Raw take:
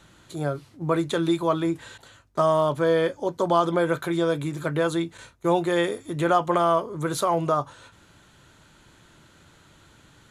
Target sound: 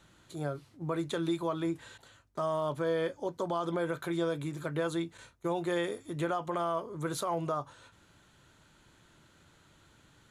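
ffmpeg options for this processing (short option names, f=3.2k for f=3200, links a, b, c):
-af "alimiter=limit=-14.5dB:level=0:latency=1:release=104,volume=-7.5dB"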